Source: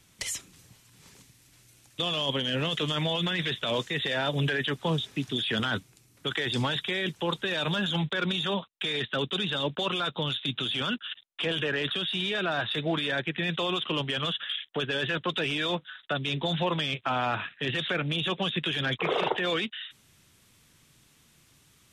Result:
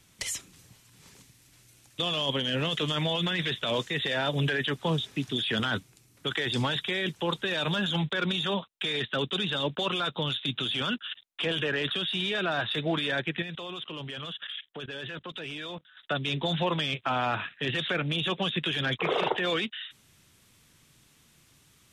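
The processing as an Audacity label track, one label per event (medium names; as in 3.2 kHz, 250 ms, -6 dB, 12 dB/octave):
13.420000	15.970000	level held to a coarse grid steps of 19 dB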